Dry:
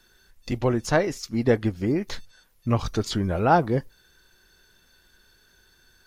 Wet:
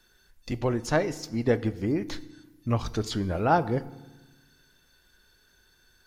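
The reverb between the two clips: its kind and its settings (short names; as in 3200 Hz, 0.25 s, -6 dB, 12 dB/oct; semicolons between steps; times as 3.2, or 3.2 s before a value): FDN reverb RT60 1.1 s, low-frequency decay 1.45×, high-frequency decay 0.8×, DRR 15 dB; gain -3.5 dB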